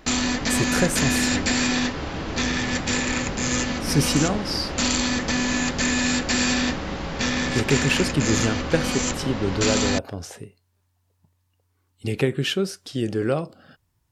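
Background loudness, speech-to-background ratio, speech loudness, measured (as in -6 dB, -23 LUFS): -23.5 LUFS, -2.0 dB, -25.5 LUFS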